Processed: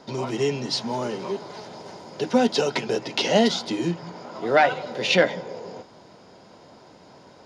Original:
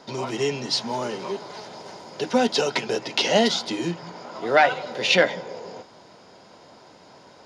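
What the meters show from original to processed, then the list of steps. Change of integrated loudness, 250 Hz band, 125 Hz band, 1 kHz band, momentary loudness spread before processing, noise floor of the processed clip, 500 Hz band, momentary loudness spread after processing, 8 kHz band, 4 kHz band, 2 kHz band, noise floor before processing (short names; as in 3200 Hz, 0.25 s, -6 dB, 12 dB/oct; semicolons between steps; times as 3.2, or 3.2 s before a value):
-0.5 dB, +2.0 dB, +3.0 dB, -1.0 dB, 19 LU, -50 dBFS, +0.5 dB, 19 LU, -2.5 dB, -2.5 dB, -2.0 dB, -50 dBFS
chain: low shelf 500 Hz +6 dB; gain -2.5 dB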